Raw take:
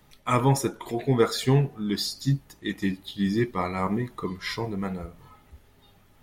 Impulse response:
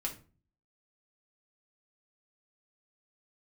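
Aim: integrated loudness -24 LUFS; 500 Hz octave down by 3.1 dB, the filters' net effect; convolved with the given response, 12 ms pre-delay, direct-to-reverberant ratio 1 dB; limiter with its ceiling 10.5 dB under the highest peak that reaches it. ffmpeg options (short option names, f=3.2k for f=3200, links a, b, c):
-filter_complex "[0:a]equalizer=f=500:t=o:g=-4,alimiter=limit=-20.5dB:level=0:latency=1,asplit=2[a][b];[1:a]atrim=start_sample=2205,adelay=12[c];[b][c]afir=irnorm=-1:irlink=0,volume=-2.5dB[d];[a][d]amix=inputs=2:normalize=0,volume=6dB"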